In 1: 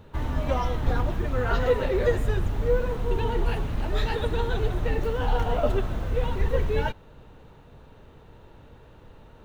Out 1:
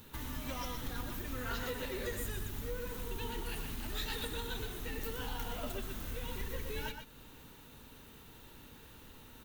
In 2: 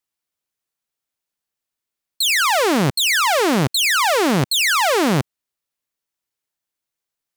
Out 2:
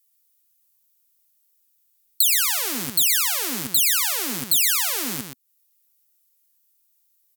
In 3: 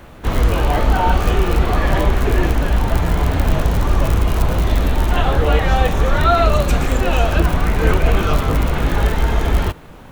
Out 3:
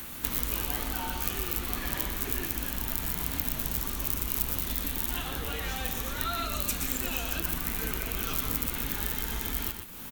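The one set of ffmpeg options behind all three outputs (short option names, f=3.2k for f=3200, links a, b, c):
-filter_complex "[0:a]acompressor=threshold=-37dB:ratio=2,asplit=2[a][b];[b]adelay=122.4,volume=-6dB,highshelf=f=4k:g=-2.76[c];[a][c]amix=inputs=2:normalize=0,crystalizer=i=9.5:c=0,equalizer=f=250:t=o:w=0.67:g=8,equalizer=f=630:t=o:w=0.67:g=-5,equalizer=f=16k:t=o:w=0.67:g=8,volume=-9.5dB"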